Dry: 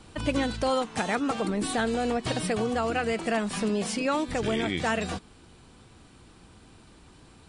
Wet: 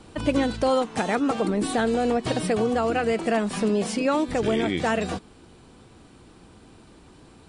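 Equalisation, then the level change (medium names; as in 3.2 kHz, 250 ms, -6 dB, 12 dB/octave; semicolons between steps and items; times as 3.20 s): peaking EQ 390 Hz +5.5 dB 2.5 oct; 0.0 dB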